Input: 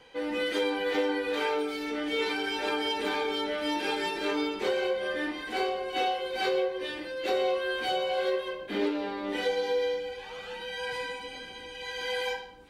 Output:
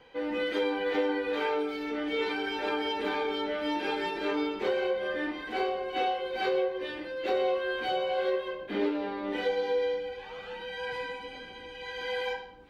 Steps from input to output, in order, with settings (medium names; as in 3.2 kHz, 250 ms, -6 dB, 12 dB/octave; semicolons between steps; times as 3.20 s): peaking EQ 9.5 kHz -14 dB 1.7 oct